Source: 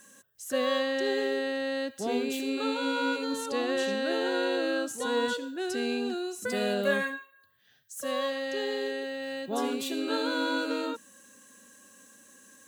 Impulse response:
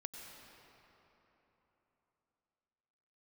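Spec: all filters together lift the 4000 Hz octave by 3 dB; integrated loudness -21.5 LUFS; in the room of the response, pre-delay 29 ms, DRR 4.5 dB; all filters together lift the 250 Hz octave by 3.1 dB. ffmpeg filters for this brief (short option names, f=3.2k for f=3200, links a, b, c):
-filter_complex "[0:a]equalizer=f=250:t=o:g=3.5,equalizer=f=4k:t=o:g=3.5,asplit=2[a][b];[1:a]atrim=start_sample=2205,adelay=29[c];[b][c]afir=irnorm=-1:irlink=0,volume=-2dB[d];[a][d]amix=inputs=2:normalize=0,volume=6dB"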